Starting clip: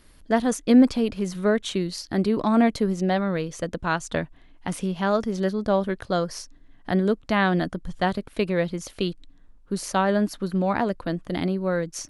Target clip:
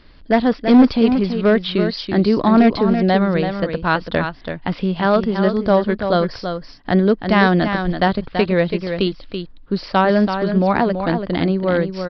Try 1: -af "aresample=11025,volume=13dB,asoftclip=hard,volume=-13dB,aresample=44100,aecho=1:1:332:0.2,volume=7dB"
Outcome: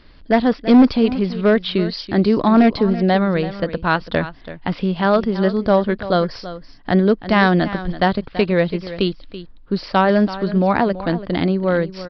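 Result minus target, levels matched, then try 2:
echo-to-direct -6.5 dB
-af "aresample=11025,volume=13dB,asoftclip=hard,volume=-13dB,aresample=44100,aecho=1:1:332:0.422,volume=7dB"

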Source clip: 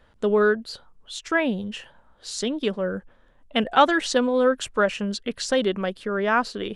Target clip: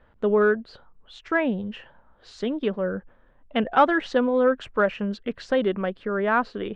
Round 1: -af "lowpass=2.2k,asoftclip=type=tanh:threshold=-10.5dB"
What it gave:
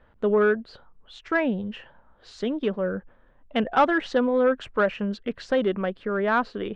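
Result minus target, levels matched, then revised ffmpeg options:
soft clip: distortion +10 dB
-af "lowpass=2.2k,asoftclip=type=tanh:threshold=-4dB"

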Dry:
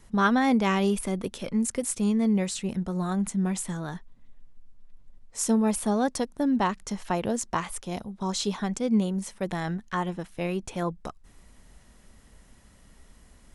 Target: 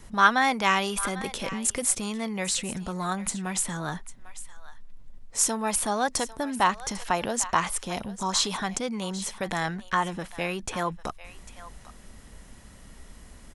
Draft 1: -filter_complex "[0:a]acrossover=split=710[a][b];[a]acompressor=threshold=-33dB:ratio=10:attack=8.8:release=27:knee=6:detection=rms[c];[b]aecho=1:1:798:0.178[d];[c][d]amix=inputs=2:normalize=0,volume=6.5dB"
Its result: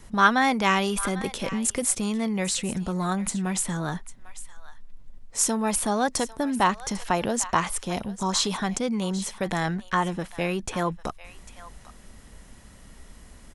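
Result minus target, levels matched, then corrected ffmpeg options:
compressor: peak gain reduction -6 dB
-filter_complex "[0:a]acrossover=split=710[a][b];[a]acompressor=threshold=-39.5dB:ratio=10:attack=8.8:release=27:knee=6:detection=rms[c];[b]aecho=1:1:798:0.178[d];[c][d]amix=inputs=2:normalize=0,volume=6.5dB"

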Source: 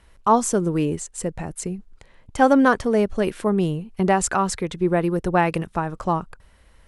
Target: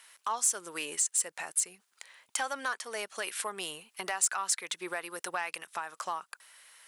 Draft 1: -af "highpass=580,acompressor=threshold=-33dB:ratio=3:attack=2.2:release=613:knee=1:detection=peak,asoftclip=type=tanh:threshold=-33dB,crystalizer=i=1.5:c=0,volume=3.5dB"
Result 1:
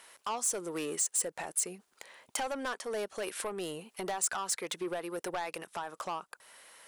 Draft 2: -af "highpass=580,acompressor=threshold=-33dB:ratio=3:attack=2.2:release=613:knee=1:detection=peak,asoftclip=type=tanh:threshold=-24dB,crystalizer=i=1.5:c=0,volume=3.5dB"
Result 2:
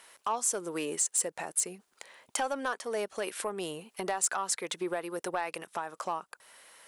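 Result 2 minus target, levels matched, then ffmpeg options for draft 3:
500 Hz band +7.5 dB
-af "highpass=1.3k,acompressor=threshold=-33dB:ratio=3:attack=2.2:release=613:knee=1:detection=peak,asoftclip=type=tanh:threshold=-24dB,crystalizer=i=1.5:c=0,volume=3.5dB"

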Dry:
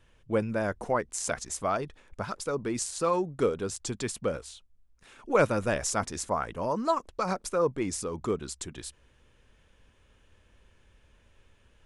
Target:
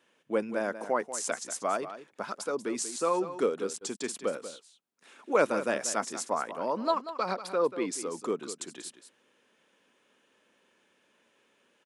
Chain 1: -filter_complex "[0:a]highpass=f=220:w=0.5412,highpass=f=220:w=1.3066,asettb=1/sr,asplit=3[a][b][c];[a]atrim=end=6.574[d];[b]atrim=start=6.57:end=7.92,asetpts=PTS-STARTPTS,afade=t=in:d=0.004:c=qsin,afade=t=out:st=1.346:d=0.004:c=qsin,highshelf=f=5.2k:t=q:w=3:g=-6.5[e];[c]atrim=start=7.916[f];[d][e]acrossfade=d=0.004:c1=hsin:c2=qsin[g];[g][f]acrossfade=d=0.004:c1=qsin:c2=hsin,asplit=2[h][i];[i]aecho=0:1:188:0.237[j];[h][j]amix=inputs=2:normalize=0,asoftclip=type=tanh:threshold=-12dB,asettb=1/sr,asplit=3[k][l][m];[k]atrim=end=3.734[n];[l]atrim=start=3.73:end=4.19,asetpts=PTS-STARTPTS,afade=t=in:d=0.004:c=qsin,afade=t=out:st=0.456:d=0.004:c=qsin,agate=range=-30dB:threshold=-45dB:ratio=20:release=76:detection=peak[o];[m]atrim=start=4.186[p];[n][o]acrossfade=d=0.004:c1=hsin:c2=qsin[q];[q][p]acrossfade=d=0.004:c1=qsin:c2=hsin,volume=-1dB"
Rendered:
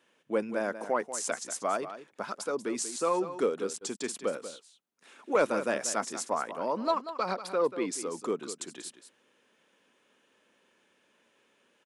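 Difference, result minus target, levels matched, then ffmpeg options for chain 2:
soft clip: distortion +15 dB
-filter_complex "[0:a]highpass=f=220:w=0.5412,highpass=f=220:w=1.3066,asettb=1/sr,asplit=3[a][b][c];[a]atrim=end=6.574[d];[b]atrim=start=6.57:end=7.92,asetpts=PTS-STARTPTS,afade=t=in:d=0.004:c=qsin,afade=t=out:st=1.346:d=0.004:c=qsin,highshelf=f=5.2k:t=q:w=3:g=-6.5[e];[c]atrim=start=7.916[f];[d][e]acrossfade=d=0.004:c1=hsin:c2=qsin[g];[g][f]acrossfade=d=0.004:c1=qsin:c2=hsin,asplit=2[h][i];[i]aecho=0:1:188:0.237[j];[h][j]amix=inputs=2:normalize=0,asoftclip=type=tanh:threshold=-3.5dB,asettb=1/sr,asplit=3[k][l][m];[k]atrim=end=3.734[n];[l]atrim=start=3.73:end=4.19,asetpts=PTS-STARTPTS,afade=t=in:d=0.004:c=qsin,afade=t=out:st=0.456:d=0.004:c=qsin,agate=range=-30dB:threshold=-45dB:ratio=20:release=76:detection=peak[o];[m]atrim=start=4.186[p];[n][o]acrossfade=d=0.004:c1=hsin:c2=qsin[q];[q][p]acrossfade=d=0.004:c1=qsin:c2=hsin,volume=-1dB"

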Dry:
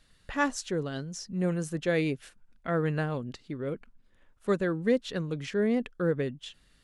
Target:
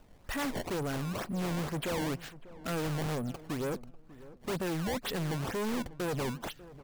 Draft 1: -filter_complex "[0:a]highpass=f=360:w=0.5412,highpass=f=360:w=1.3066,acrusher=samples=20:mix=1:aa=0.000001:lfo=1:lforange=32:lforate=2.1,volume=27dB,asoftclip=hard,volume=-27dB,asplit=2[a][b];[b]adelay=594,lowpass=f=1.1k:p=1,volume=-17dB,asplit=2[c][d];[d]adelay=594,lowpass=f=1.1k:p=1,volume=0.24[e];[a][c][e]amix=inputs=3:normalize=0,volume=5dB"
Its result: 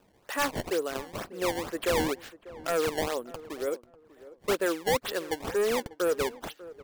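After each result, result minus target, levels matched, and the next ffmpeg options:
overloaded stage: distortion -7 dB; 500 Hz band +3.5 dB
-filter_complex "[0:a]highpass=f=360:w=0.5412,highpass=f=360:w=1.3066,acrusher=samples=20:mix=1:aa=0.000001:lfo=1:lforange=32:lforate=2.1,volume=36.5dB,asoftclip=hard,volume=-36.5dB,asplit=2[a][b];[b]adelay=594,lowpass=f=1.1k:p=1,volume=-17dB,asplit=2[c][d];[d]adelay=594,lowpass=f=1.1k:p=1,volume=0.24[e];[a][c][e]amix=inputs=3:normalize=0,volume=5dB"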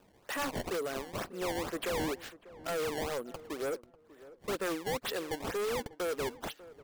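500 Hz band +3.0 dB
-filter_complex "[0:a]acrusher=samples=20:mix=1:aa=0.000001:lfo=1:lforange=32:lforate=2.1,volume=36.5dB,asoftclip=hard,volume=-36.5dB,asplit=2[a][b];[b]adelay=594,lowpass=f=1.1k:p=1,volume=-17dB,asplit=2[c][d];[d]adelay=594,lowpass=f=1.1k:p=1,volume=0.24[e];[a][c][e]amix=inputs=3:normalize=0,volume=5dB"

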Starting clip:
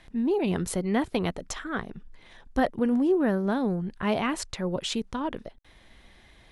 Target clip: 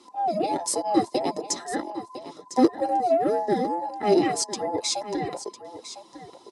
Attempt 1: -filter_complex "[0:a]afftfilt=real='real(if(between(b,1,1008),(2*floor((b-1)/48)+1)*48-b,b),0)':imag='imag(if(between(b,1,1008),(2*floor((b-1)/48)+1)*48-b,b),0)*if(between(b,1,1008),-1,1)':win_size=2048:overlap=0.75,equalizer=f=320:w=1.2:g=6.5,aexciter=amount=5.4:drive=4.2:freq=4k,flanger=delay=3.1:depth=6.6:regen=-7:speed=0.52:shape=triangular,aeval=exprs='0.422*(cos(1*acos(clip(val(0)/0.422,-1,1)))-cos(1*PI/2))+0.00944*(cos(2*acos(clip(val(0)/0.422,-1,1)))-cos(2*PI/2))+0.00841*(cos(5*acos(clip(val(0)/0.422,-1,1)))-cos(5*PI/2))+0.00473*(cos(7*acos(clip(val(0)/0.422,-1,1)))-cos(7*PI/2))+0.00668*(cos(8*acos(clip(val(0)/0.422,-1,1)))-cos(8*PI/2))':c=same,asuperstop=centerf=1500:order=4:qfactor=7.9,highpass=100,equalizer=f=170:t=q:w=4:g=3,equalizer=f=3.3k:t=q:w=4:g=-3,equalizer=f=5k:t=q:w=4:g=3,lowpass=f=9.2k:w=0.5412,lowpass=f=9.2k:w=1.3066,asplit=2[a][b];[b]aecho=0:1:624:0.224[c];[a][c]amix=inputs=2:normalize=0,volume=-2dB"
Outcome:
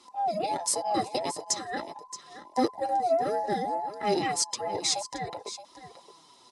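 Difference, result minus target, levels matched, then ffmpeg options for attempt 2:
echo 0.38 s early; 250 Hz band -5.5 dB
-filter_complex "[0:a]afftfilt=real='real(if(between(b,1,1008),(2*floor((b-1)/48)+1)*48-b,b),0)':imag='imag(if(between(b,1,1008),(2*floor((b-1)/48)+1)*48-b,b),0)*if(between(b,1,1008),-1,1)':win_size=2048:overlap=0.75,equalizer=f=320:w=1.2:g=18,aexciter=amount=5.4:drive=4.2:freq=4k,flanger=delay=3.1:depth=6.6:regen=-7:speed=0.52:shape=triangular,aeval=exprs='0.422*(cos(1*acos(clip(val(0)/0.422,-1,1)))-cos(1*PI/2))+0.00944*(cos(2*acos(clip(val(0)/0.422,-1,1)))-cos(2*PI/2))+0.00841*(cos(5*acos(clip(val(0)/0.422,-1,1)))-cos(5*PI/2))+0.00473*(cos(7*acos(clip(val(0)/0.422,-1,1)))-cos(7*PI/2))+0.00668*(cos(8*acos(clip(val(0)/0.422,-1,1)))-cos(8*PI/2))':c=same,asuperstop=centerf=1500:order=4:qfactor=7.9,highpass=100,equalizer=f=170:t=q:w=4:g=3,equalizer=f=3.3k:t=q:w=4:g=-3,equalizer=f=5k:t=q:w=4:g=3,lowpass=f=9.2k:w=0.5412,lowpass=f=9.2k:w=1.3066,asplit=2[a][b];[b]aecho=0:1:1004:0.224[c];[a][c]amix=inputs=2:normalize=0,volume=-2dB"

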